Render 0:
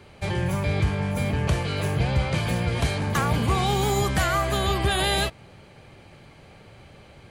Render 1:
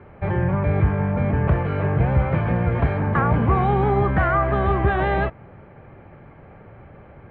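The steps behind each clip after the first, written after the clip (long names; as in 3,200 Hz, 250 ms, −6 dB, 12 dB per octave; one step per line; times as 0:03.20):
low-pass filter 1,800 Hz 24 dB per octave
level +4.5 dB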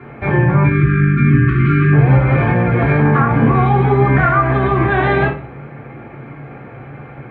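time-frequency box erased 0:00.64–0:01.93, 430–1,100 Hz
brickwall limiter −17 dBFS, peak gain reduction 8 dB
convolution reverb RT60 0.40 s, pre-delay 3 ms, DRR −3 dB
level +8.5 dB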